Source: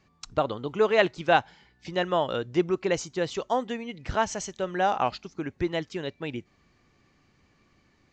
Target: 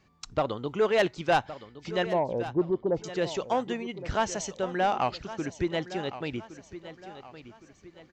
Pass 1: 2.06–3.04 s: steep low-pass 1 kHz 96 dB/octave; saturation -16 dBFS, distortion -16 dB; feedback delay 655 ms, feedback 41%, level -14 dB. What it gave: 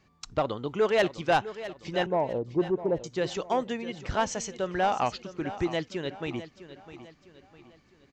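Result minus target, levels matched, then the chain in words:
echo 460 ms early
2.06–3.04 s: steep low-pass 1 kHz 96 dB/octave; saturation -16 dBFS, distortion -16 dB; feedback delay 1115 ms, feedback 41%, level -14 dB

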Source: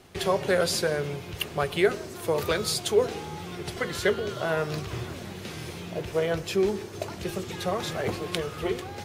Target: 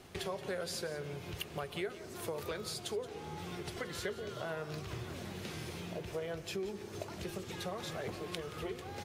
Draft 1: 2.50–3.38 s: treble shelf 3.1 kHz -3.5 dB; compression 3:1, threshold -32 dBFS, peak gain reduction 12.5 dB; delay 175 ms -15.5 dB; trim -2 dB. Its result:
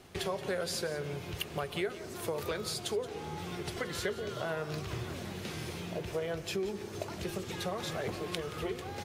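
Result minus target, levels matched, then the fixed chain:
compression: peak gain reduction -4.5 dB
2.50–3.38 s: treble shelf 3.1 kHz -3.5 dB; compression 3:1, threshold -38.5 dBFS, peak gain reduction 16.5 dB; delay 175 ms -15.5 dB; trim -2 dB

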